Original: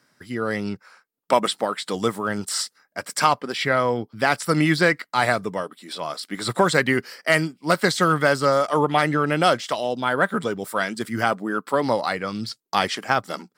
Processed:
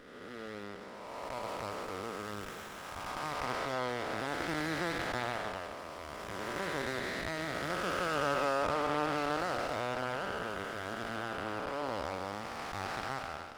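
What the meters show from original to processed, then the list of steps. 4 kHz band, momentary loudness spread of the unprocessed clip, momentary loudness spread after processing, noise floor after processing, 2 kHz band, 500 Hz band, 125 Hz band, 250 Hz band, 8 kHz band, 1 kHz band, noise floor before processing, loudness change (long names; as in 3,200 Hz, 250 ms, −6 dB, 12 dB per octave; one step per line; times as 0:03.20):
−14.0 dB, 11 LU, 12 LU, −46 dBFS, −13.5 dB, −14.0 dB, −16.0 dB, −15.5 dB, −16.0 dB, −13.0 dB, −70 dBFS, −14.0 dB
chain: spectrum smeared in time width 626 ms
meter weighting curve A
windowed peak hold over 9 samples
level −5.5 dB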